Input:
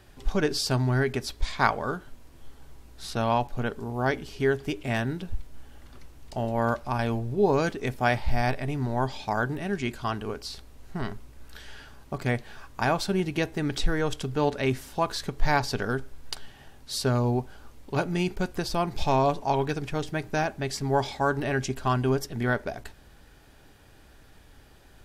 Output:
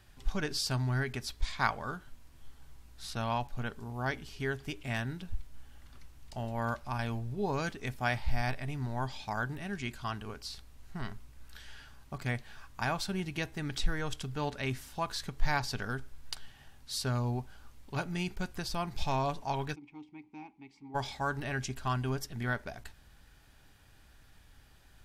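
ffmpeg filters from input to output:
-filter_complex "[0:a]asplit=3[s0][s1][s2];[s0]afade=t=out:st=19.74:d=0.02[s3];[s1]asplit=3[s4][s5][s6];[s4]bandpass=f=300:t=q:w=8,volume=1[s7];[s5]bandpass=f=870:t=q:w=8,volume=0.501[s8];[s6]bandpass=f=2240:t=q:w=8,volume=0.355[s9];[s7][s8][s9]amix=inputs=3:normalize=0,afade=t=in:st=19.74:d=0.02,afade=t=out:st=20.94:d=0.02[s10];[s2]afade=t=in:st=20.94:d=0.02[s11];[s3][s10][s11]amix=inputs=3:normalize=0,equalizer=f=420:w=0.78:g=-8.5,volume=0.596"

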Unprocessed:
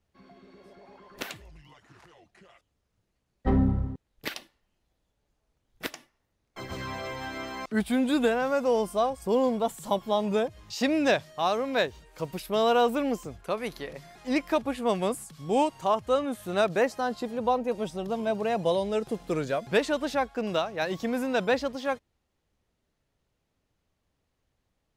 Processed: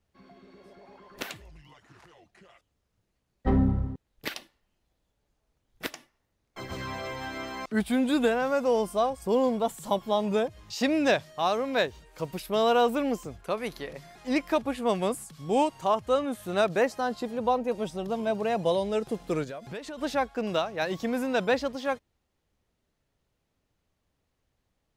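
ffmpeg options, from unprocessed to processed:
-filter_complex "[0:a]asplit=3[s0][s1][s2];[s0]afade=t=out:st=19.43:d=0.02[s3];[s1]acompressor=threshold=0.0158:ratio=5:attack=3.2:release=140:knee=1:detection=peak,afade=t=in:st=19.43:d=0.02,afade=t=out:st=19.97:d=0.02[s4];[s2]afade=t=in:st=19.97:d=0.02[s5];[s3][s4][s5]amix=inputs=3:normalize=0"

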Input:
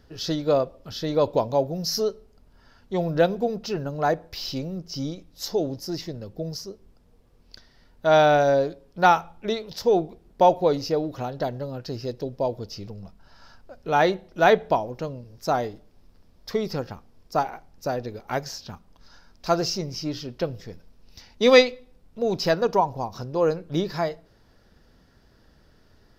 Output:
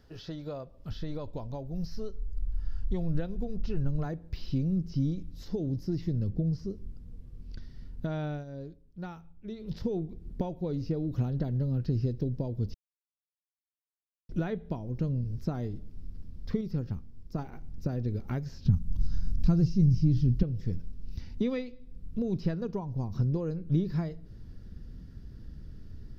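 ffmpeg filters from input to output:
-filter_complex "[0:a]asplit=3[s0][s1][s2];[s0]afade=t=out:st=0.89:d=0.02[s3];[s1]asubboost=boost=11:cutoff=59,afade=t=in:st=0.89:d=0.02,afade=t=out:st=4.04:d=0.02[s4];[s2]afade=t=in:st=4.04:d=0.02[s5];[s3][s4][s5]amix=inputs=3:normalize=0,asettb=1/sr,asplit=3[s6][s7][s8];[s6]atrim=end=6.304[s9];[s7]atrim=start=6.3:end=6.7,asetpts=PTS-STARTPTS,afade=t=in:d=0.004:c=qsin,afade=t=out:st=0.396:d=0.004:c=qsin,aemphasis=mode=reproduction:type=50kf[s10];[s8]atrim=start=6.696[s11];[s9][s10]acrossfade=d=0.004:c1=hsin:c2=qsin[s12];[s12][s11]acrossfade=d=0.004:c1=qsin:c2=hsin,asettb=1/sr,asplit=3[s13][s14][s15];[s13]atrim=end=18.654[s16];[s14]atrim=start=18.65:end=20.43,asetpts=PTS-STARTPTS,afade=t=in:d=0.004:c=qsin,afade=t=out:st=1.776:d=0.004:c=qsin,bass=f=250:g=15,treble=f=4000:g=11[s17];[s15]atrim=start=20.426[s18];[s16][s17]acrossfade=d=0.004:c1=hsin:c2=qsin[s19];[s19][s18]acrossfade=d=0.004:c1=qsin:c2=hsin,asplit=7[s20][s21][s22][s23][s24][s25][s26];[s20]atrim=end=8.45,asetpts=PTS-STARTPTS,afade=t=out:st=8.24:d=0.21:silence=0.141254[s27];[s21]atrim=start=8.45:end=9.57,asetpts=PTS-STARTPTS,volume=0.141[s28];[s22]atrim=start=9.57:end=12.74,asetpts=PTS-STARTPTS,afade=t=in:d=0.21:silence=0.141254,afade=t=out:st=3.166:d=0.004:c=hsin[s29];[s23]atrim=start=12.74:end=14.29,asetpts=PTS-STARTPTS,volume=0[s30];[s24]atrim=start=14.29:end=16.612,asetpts=PTS-STARTPTS,afade=t=in:d=0.004:c=hsin[s31];[s25]atrim=start=16.608:end=17.392,asetpts=PTS-STARTPTS,volume=0.531[s32];[s26]atrim=start=17.388[s33];[s27][s28][s29][s30][s31]concat=n=5:v=0:a=1[s34];[s34][s32]acrossfade=d=0.004:c1=hsin:c2=hsin[s35];[s35][s33]acrossfade=d=0.004:c1=hsin:c2=hsin,acompressor=threshold=0.0178:ratio=3,asubboost=boost=10.5:cutoff=220,acrossover=split=3300[s36][s37];[s37]acompressor=threshold=0.00178:ratio=4:attack=1:release=60[s38];[s36][s38]amix=inputs=2:normalize=0,volume=0.596"

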